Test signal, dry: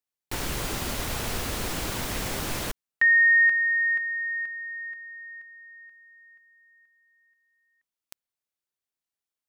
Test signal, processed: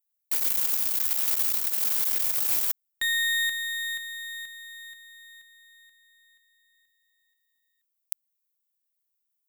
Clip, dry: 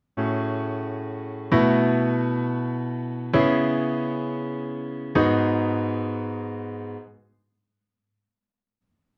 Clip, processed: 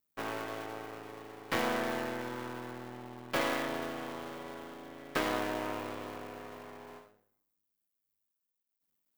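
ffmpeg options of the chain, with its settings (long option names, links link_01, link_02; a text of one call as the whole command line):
ffmpeg -i in.wav -af "aeval=exprs='max(val(0),0)':channel_layout=same,aemphasis=mode=production:type=riaa,volume=-6dB" out.wav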